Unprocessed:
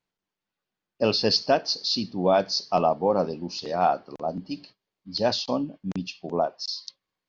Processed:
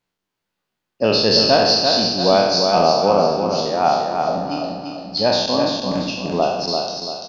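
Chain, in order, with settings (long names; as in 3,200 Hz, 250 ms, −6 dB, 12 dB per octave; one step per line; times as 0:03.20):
peak hold with a decay on every bin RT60 1.02 s
repeating echo 341 ms, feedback 41%, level −5 dB
level +3.5 dB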